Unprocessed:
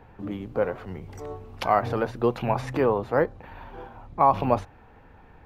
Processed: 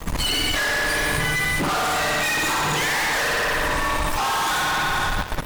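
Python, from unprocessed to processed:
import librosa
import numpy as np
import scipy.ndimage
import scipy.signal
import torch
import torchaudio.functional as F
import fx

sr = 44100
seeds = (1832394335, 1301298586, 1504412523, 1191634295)

y = fx.octave_mirror(x, sr, pivot_hz=940.0)
y = fx.rev_spring(y, sr, rt60_s=1.5, pass_ms=(53,), chirp_ms=20, drr_db=-4.0)
y = fx.dmg_noise_colour(y, sr, seeds[0], colour='brown', level_db=-41.0)
y = fx.fuzz(y, sr, gain_db=39.0, gate_db=-46.0)
y = fx.level_steps(y, sr, step_db=11)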